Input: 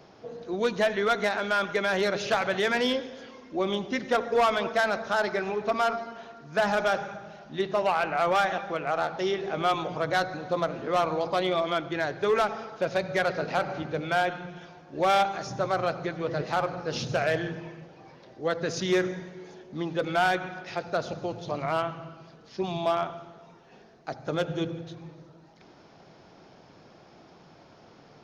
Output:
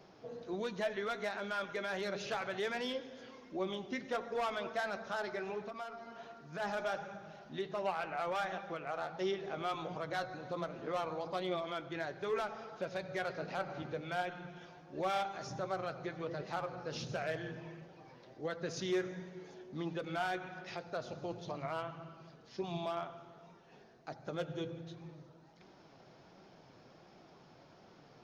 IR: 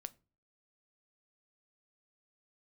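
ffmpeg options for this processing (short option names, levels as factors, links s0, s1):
-filter_complex "[0:a]alimiter=limit=0.0708:level=0:latency=1:release=422,asplit=3[s0][s1][s2];[s0]afade=t=out:st=5.64:d=0.02[s3];[s1]acompressor=threshold=0.0178:ratio=5,afade=t=in:st=5.64:d=0.02,afade=t=out:st=6.59:d=0.02[s4];[s2]afade=t=in:st=6.59:d=0.02[s5];[s3][s4][s5]amix=inputs=3:normalize=0,flanger=delay=5.1:depth=3.1:regen=68:speed=1.4:shape=sinusoidal,volume=0.794"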